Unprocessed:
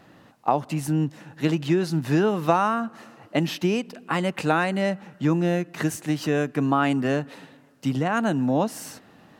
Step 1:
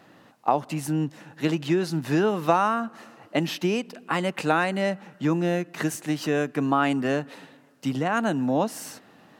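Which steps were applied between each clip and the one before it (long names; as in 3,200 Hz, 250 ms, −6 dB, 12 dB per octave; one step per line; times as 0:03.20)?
high-pass filter 180 Hz 6 dB per octave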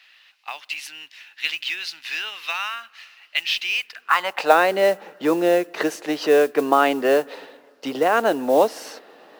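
high-pass filter sweep 2,500 Hz → 450 Hz, 0:03.75–0:04.63
high shelf with overshoot 6,200 Hz −7.5 dB, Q 1.5
noise that follows the level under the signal 24 dB
level +4 dB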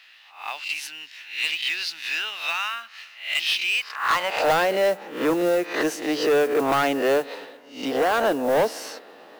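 peak hold with a rise ahead of every peak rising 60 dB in 0.43 s
soft clipping −15 dBFS, distortion −10 dB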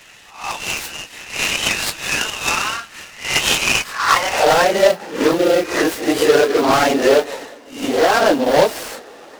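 random phases in long frames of 50 ms
short delay modulated by noise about 3,100 Hz, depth 0.04 ms
level +7 dB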